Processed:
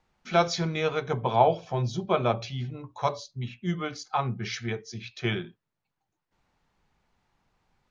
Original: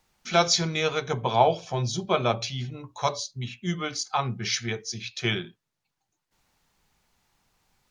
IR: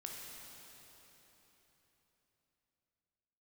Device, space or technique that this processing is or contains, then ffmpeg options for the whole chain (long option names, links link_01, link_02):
through cloth: -af "lowpass=8500,highshelf=frequency=3700:gain=-14.5"